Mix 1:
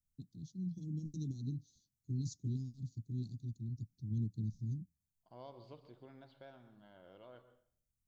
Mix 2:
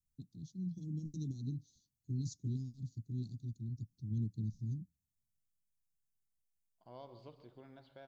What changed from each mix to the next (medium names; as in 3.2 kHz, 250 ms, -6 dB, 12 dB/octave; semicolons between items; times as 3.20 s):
second voice: entry +1.55 s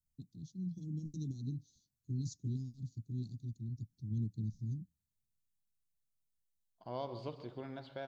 second voice +11.0 dB